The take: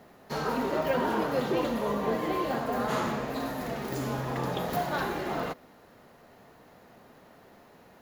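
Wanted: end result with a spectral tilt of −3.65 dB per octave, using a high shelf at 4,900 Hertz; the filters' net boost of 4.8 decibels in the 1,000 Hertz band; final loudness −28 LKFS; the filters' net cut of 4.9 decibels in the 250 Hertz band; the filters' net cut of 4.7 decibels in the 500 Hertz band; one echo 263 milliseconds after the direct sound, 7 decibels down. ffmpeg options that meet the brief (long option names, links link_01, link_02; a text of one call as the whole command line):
ffmpeg -i in.wav -af "equalizer=frequency=250:width_type=o:gain=-4.5,equalizer=frequency=500:width_type=o:gain=-7.5,equalizer=frequency=1000:width_type=o:gain=8.5,highshelf=frequency=4900:gain=-5.5,aecho=1:1:263:0.447,volume=1dB" out.wav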